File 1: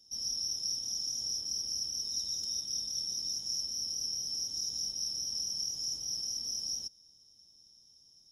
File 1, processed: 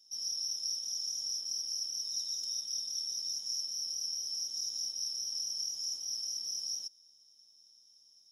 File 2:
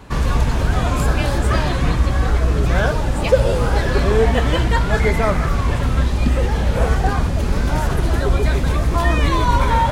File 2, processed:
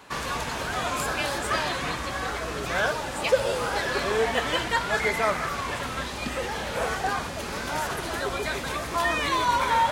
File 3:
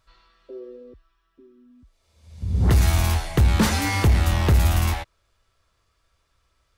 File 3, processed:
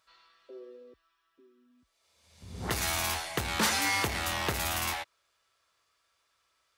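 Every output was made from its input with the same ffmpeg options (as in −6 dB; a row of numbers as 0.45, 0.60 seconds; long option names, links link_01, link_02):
-af "highpass=frequency=910:poles=1,volume=-1dB"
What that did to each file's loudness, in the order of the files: −1.0, −8.5, −9.0 LU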